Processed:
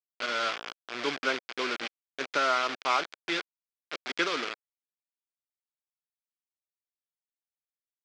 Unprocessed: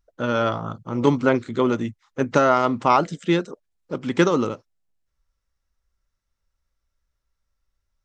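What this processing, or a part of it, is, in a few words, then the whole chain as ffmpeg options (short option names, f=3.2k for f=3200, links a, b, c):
hand-held game console: -filter_complex "[0:a]asettb=1/sr,asplit=3[a][b][c];[a]atrim=end=2.624[d];[b]atrim=start=2.62:end=4.28,asetpts=PTS-STARTPTS,afade=t=in:d=0.004:c=qsin,afade=t=out:st=1.656:d=0.004:c=qsin,bandreject=f=60:t=h:w=6,bandreject=f=120:t=h:w=6,bandreject=f=180:t=h:w=6,bandreject=f=240:t=h:w=6,bandreject=f=300:t=h:w=6,bandreject=f=360:t=h:w=6[e];[c]atrim=start=4.276[f];[d][e]acrossfade=d=0.004:c1=hsin:c2=qsin[g];[g][f]acrossfade=d=0.004:c1=qsin:c2=hsin,acrusher=bits=3:mix=0:aa=0.000001,highpass=470,equalizer=f=540:t=q:w=4:g=-4,equalizer=f=880:t=q:w=4:g=-6,equalizer=f=1.5k:t=q:w=4:g=5,equalizer=f=2.3k:t=q:w=4:g=7,equalizer=f=3.3k:t=q:w=4:g=5,equalizer=f=4.8k:t=q:w=4:g=4,lowpass=f=5.7k:w=0.5412,lowpass=f=5.7k:w=1.3066,volume=-8.5dB"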